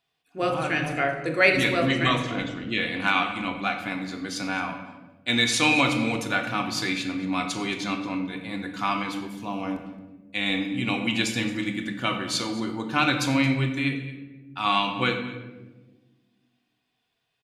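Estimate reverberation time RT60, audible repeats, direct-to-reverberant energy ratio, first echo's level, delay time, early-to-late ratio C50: 1.2 s, 1, 3.5 dB, −18.0 dB, 222 ms, 7.5 dB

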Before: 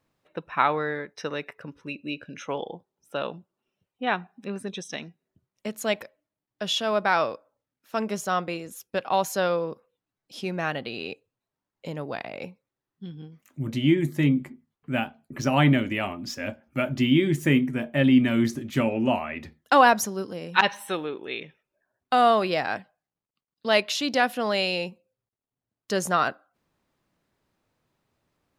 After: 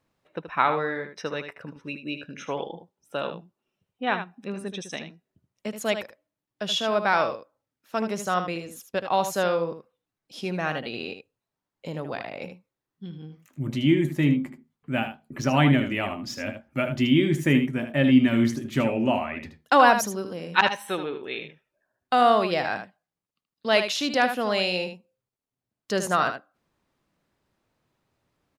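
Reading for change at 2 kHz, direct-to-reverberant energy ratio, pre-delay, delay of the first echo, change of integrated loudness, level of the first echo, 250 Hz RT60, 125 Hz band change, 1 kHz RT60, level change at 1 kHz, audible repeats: +0.5 dB, no reverb audible, no reverb audible, 77 ms, +0.5 dB, −9.0 dB, no reverb audible, +0.5 dB, no reverb audible, +0.5 dB, 1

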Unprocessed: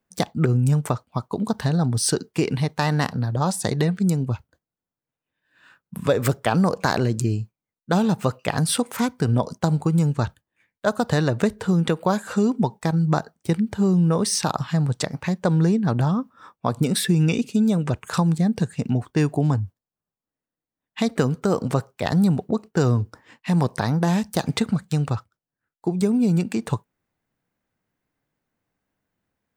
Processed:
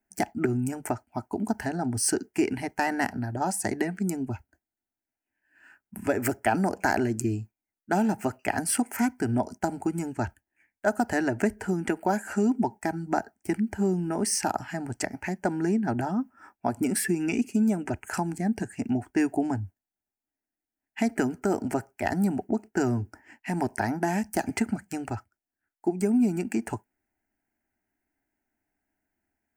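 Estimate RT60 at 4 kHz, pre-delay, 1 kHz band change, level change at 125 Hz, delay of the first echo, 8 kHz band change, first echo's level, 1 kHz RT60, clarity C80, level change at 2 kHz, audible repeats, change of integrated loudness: no reverb audible, no reverb audible, −2.5 dB, −13.0 dB, no echo audible, −2.5 dB, no echo audible, no reverb audible, no reverb audible, −1.0 dB, no echo audible, −5.5 dB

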